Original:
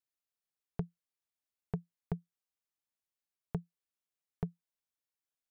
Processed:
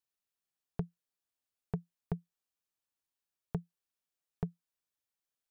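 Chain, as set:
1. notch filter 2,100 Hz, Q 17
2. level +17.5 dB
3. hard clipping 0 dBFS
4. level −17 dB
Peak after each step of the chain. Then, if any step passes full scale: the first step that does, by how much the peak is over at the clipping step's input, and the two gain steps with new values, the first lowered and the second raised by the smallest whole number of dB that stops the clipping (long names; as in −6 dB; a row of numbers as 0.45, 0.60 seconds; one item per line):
−22.0, −4.5, −4.5, −21.5 dBFS
no step passes full scale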